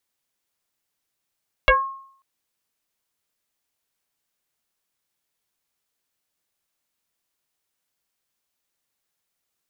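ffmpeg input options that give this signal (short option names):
-f lavfi -i "aevalsrc='0.355*pow(10,-3*t/0.6)*sin(2*PI*1080*t+3.8*pow(10,-3*t/0.22)*sin(2*PI*0.52*1080*t))':d=0.54:s=44100"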